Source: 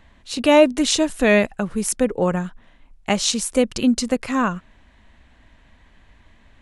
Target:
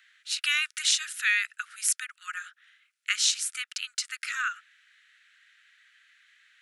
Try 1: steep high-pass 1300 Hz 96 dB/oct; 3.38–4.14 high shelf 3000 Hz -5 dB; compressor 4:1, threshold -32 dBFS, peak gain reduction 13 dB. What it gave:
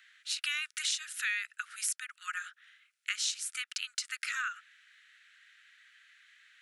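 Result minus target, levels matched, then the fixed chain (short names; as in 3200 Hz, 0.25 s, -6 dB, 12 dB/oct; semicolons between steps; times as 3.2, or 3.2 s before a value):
compressor: peak gain reduction +9 dB
steep high-pass 1300 Hz 96 dB/oct; 3.38–4.14 high shelf 3000 Hz -5 dB; compressor 4:1, threshold -20 dBFS, peak gain reduction 4 dB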